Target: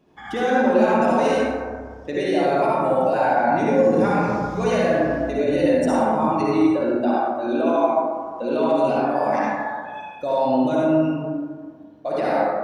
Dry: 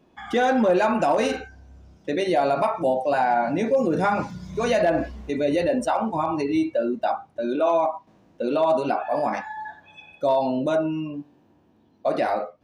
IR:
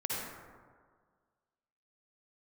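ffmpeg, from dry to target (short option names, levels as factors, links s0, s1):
-filter_complex "[0:a]alimiter=limit=0.15:level=0:latency=1[s0];[1:a]atrim=start_sample=2205[s1];[s0][s1]afir=irnorm=-1:irlink=0"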